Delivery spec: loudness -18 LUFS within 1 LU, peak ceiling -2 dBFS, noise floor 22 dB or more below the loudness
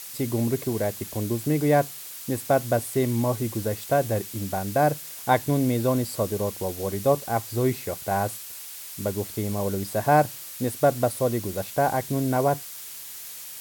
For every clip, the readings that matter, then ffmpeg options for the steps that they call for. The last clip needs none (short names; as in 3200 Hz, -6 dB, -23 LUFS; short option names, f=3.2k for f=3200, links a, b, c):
noise floor -39 dBFS; noise floor target -48 dBFS; loudness -25.5 LUFS; peak -6.5 dBFS; loudness target -18.0 LUFS
-> -af "afftdn=nr=9:nf=-39"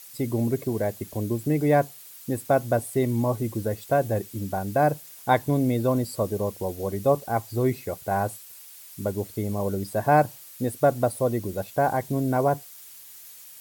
noise floor -46 dBFS; noise floor target -48 dBFS
-> -af "afftdn=nr=6:nf=-46"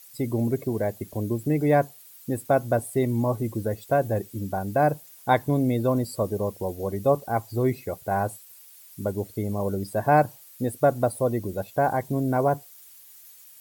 noise floor -50 dBFS; loudness -26.0 LUFS; peak -7.0 dBFS; loudness target -18.0 LUFS
-> -af "volume=8dB,alimiter=limit=-2dB:level=0:latency=1"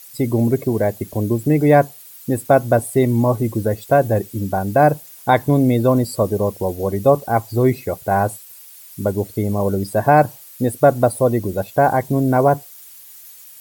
loudness -18.0 LUFS; peak -2.0 dBFS; noise floor -42 dBFS